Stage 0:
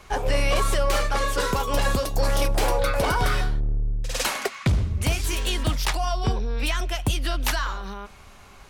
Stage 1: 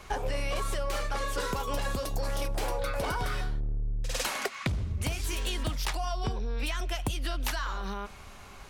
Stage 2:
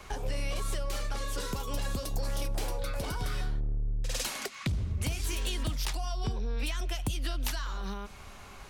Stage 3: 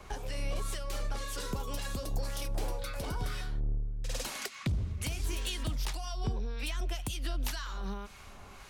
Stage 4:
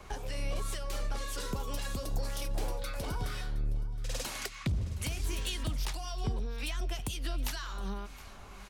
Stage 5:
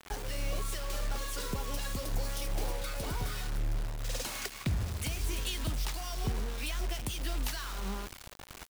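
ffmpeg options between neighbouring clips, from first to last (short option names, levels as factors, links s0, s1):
-af "acompressor=threshold=0.0398:ratio=6"
-filter_complex "[0:a]acrossover=split=340|3000[s0][s1][s2];[s1]acompressor=threshold=0.00794:ratio=3[s3];[s0][s3][s2]amix=inputs=3:normalize=0"
-filter_complex "[0:a]acrossover=split=1100[s0][s1];[s0]aeval=exprs='val(0)*(1-0.5/2+0.5/2*cos(2*PI*1.9*n/s))':c=same[s2];[s1]aeval=exprs='val(0)*(1-0.5/2-0.5/2*cos(2*PI*1.9*n/s))':c=same[s3];[s2][s3]amix=inputs=2:normalize=0"
-af "aecho=1:1:718:0.119"
-af "acrusher=bits=6:mix=0:aa=0.000001"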